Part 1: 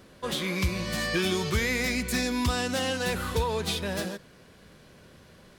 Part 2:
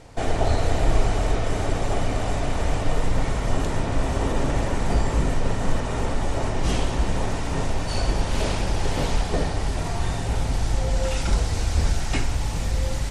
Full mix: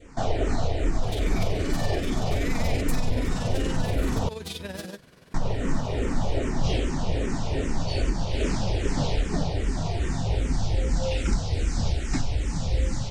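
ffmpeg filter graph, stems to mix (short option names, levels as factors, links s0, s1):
-filter_complex "[0:a]acompressor=threshold=0.0282:ratio=6,tremolo=f=21:d=0.621,adelay=800,volume=1.33[s0];[1:a]lowpass=f=7800:w=0.5412,lowpass=f=7800:w=1.3066,equalizer=f=250:t=o:w=2.3:g=3.5,asplit=2[s1][s2];[s2]afreqshift=-2.5[s3];[s1][s3]amix=inputs=2:normalize=1,volume=1.12,asplit=3[s4][s5][s6];[s4]atrim=end=4.29,asetpts=PTS-STARTPTS,afade=t=out:st=4.286:d=0.004:c=hsin[s7];[s5]atrim=start=4.29:end=5.34,asetpts=PTS-STARTPTS,volume=0[s8];[s6]atrim=start=5.34,asetpts=PTS-STARTPTS,afade=t=in:d=0.004:c=hsin[s9];[s7][s8][s9]concat=n=3:v=0:a=1[s10];[s0][s10]amix=inputs=2:normalize=0,adynamicequalizer=threshold=0.00631:dfrequency=1100:dqfactor=0.96:tfrequency=1100:tqfactor=0.96:attack=5:release=100:ratio=0.375:range=2.5:mode=cutabove:tftype=bell,alimiter=limit=0.211:level=0:latency=1:release=417"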